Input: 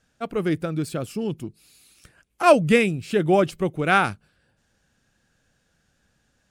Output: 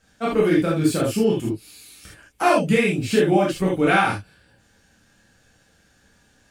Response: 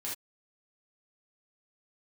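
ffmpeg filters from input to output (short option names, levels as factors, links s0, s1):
-filter_complex "[0:a]acompressor=threshold=0.0708:ratio=8[s0];[1:a]atrim=start_sample=2205[s1];[s0][s1]afir=irnorm=-1:irlink=0,volume=2.66"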